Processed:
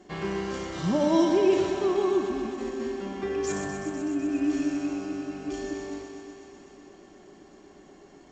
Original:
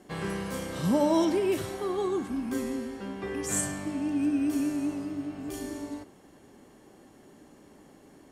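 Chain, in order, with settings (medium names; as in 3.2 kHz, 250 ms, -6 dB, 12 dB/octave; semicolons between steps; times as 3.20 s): 2.43–2.92 s: compressor with a negative ratio -34 dBFS, ratio -0.5; 3.52–4.29 s: low-pass 1.8 kHz 6 dB/octave; thinning echo 125 ms, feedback 81%, high-pass 170 Hz, level -7.5 dB; reverberation, pre-delay 3 ms, DRR 6.5 dB; G.722 64 kbps 16 kHz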